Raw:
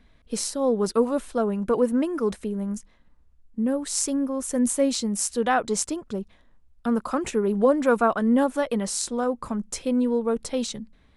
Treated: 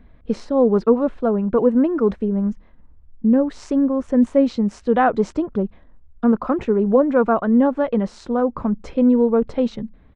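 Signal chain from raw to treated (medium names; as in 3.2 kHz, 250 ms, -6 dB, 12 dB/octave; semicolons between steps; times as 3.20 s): tape spacing loss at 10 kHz 43 dB; gain riding within 4 dB 2 s; tempo 1.1×; trim +7.5 dB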